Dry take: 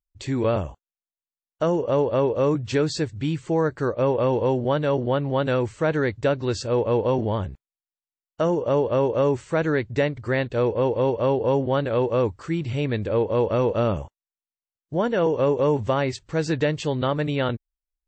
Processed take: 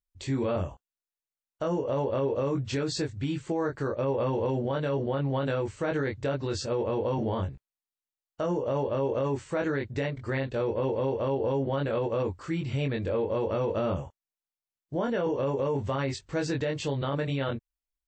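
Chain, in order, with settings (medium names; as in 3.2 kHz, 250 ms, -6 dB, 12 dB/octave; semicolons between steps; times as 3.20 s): doubling 22 ms -3 dB; peak limiter -16 dBFS, peak gain reduction 8.5 dB; trim -4.5 dB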